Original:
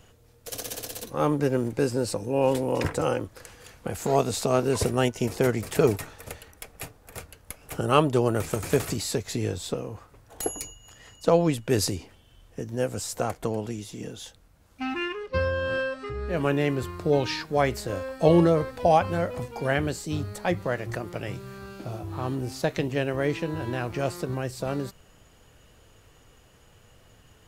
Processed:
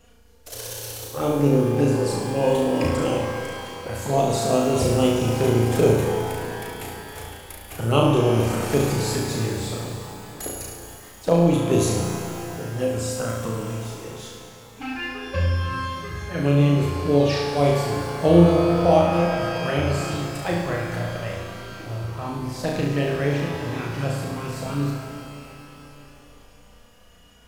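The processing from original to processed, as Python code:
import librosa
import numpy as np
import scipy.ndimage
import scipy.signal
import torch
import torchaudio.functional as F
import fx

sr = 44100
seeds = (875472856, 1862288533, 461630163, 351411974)

y = fx.env_flanger(x, sr, rest_ms=4.5, full_db=-20.5)
y = fx.room_flutter(y, sr, wall_m=6.0, rt60_s=0.8)
y = fx.rev_shimmer(y, sr, seeds[0], rt60_s=3.2, semitones=12, shimmer_db=-8, drr_db=5.0)
y = y * librosa.db_to_amplitude(1.0)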